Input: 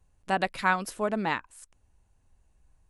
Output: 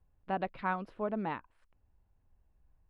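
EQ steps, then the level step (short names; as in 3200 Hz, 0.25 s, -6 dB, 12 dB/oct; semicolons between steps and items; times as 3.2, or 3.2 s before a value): high shelf 5900 Hz -8.5 dB; dynamic EQ 1800 Hz, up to -5 dB, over -41 dBFS, Q 1.7; air absorption 410 m; -4.5 dB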